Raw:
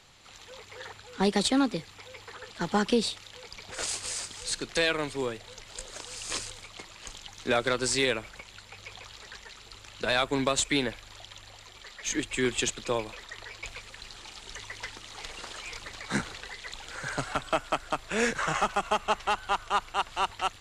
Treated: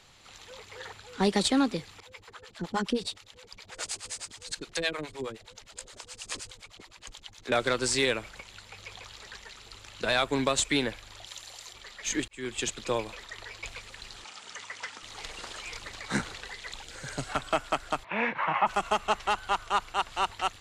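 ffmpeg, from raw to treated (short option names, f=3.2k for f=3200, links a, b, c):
-filter_complex "[0:a]asettb=1/sr,asplit=3[a][b][c];[a]atrim=end=2.004[d];[b]atrim=start=2:end=7.52,asetpts=PTS-STARTPTS,afade=t=in:d=0.004:c=qsin,afade=t=out:st=5.516:d=0.004:c=qsin,acrossover=split=470[e][f];[e]aeval=exprs='val(0)*(1-1/2+1/2*cos(2*PI*9.6*n/s))':c=same[g];[f]aeval=exprs='val(0)*(1-1/2-1/2*cos(2*PI*9.6*n/s))':c=same[h];[g][h]amix=inputs=2:normalize=0[i];[c]atrim=start=7.516[j];[d][i]acrossfade=d=0.004:c1=hsin:c2=qsin[k];[k][j]acrossfade=d=0.004:c1=qsin:c2=hsin,asettb=1/sr,asplit=3[l][m][n];[l]atrim=end=11.264[o];[m]atrim=start=11.26:end=11.73,asetpts=PTS-STARTPTS,afade=t=in:d=0.004:c=qsin,afade=t=out:st=0.466:d=0.004:c=qsin,bass=f=250:g=-9,treble=f=4k:g=10[p];[n]atrim=start=11.726[q];[o][p]acrossfade=d=0.004:c1=hsin:c2=qsin[r];[r][q]acrossfade=d=0.004:c1=qsin:c2=hsin,asettb=1/sr,asplit=3[s][t][u];[s]atrim=end=14.244[v];[t]atrim=start=14.24:end=15.03,asetpts=PTS-STARTPTS,afade=t=in:d=0.004:c=qsin,afade=t=out:st=0.786:d=0.004:c=qsin,highpass=210,equalizer=f=360:t=q:w=4:g=-9,equalizer=f=1.3k:t=q:w=4:g=5,equalizer=f=4k:t=q:w=4:g=-4,lowpass=f=9.5k:w=0.5412,lowpass=f=9.5k:w=1.3066[w];[u]atrim=start=15.026[x];[v][w]acrossfade=d=0.004:c1=hsin:c2=qsin[y];[y][x]acrossfade=d=0.004:c1=qsin:c2=hsin,asettb=1/sr,asplit=3[z][aa][ab];[z]atrim=end=16.834[ac];[aa]atrim=start=16.83:end=17.29,asetpts=PTS-STARTPTS,afade=t=in:d=0.004:c=qsin,afade=t=out:st=0.456:d=0.004:c=qsin,equalizer=f=1.2k:t=o:w=1.7:g=-9[ad];[ab]atrim=start=17.286[ae];[ac][ad]acrossfade=d=0.004:c1=hsin:c2=qsin[af];[af][ae]acrossfade=d=0.004:c1=qsin:c2=hsin,asplit=3[ag][ah][ai];[ag]afade=t=out:st=18.03:d=0.02[aj];[ah]highpass=f=130:w=0.5412,highpass=f=130:w=1.3066,equalizer=f=150:t=q:w=4:g=-5,equalizer=f=260:t=q:w=4:g=-5,equalizer=f=430:t=q:w=4:g=-10,equalizer=f=940:t=q:w=4:g=10,equalizer=f=1.5k:t=q:w=4:g=-6,equalizer=f=2.3k:t=q:w=4:g=5,lowpass=f=2.7k:w=0.5412,lowpass=f=2.7k:w=1.3066,afade=t=in:st=18.03:d=0.02,afade=t=out:st=18.66:d=0.02[ak];[ai]afade=t=in:st=18.66:d=0.02[al];[aj][ak][al]amix=inputs=3:normalize=0,asplit=2[am][an];[am]atrim=end=12.28,asetpts=PTS-STARTPTS,afade=t=out:st=12.276:d=0.004:c=hsin[ao];[an]atrim=start=12.28,asetpts=PTS-STARTPTS,afade=t=in:d=0.72:c=qsin[ap];[ao][ap]concat=n=2:v=0:a=1"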